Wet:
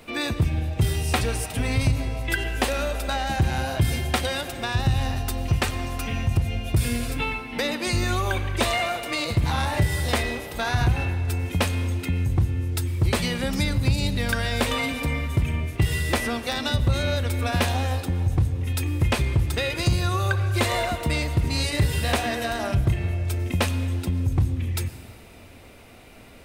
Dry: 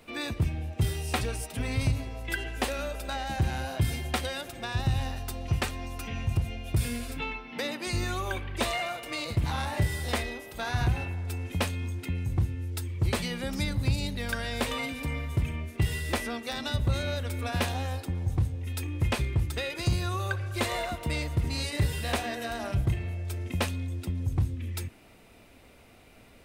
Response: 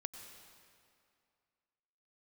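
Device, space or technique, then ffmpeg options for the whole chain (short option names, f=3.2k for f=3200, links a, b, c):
ducked reverb: -filter_complex "[0:a]asplit=3[a][b][c];[1:a]atrim=start_sample=2205[d];[b][d]afir=irnorm=-1:irlink=0[e];[c]apad=whole_len=1166243[f];[e][f]sidechaincompress=threshold=-28dB:ratio=8:attack=16:release=157,volume=0.5dB[g];[a][g]amix=inputs=2:normalize=0,volume=2.5dB"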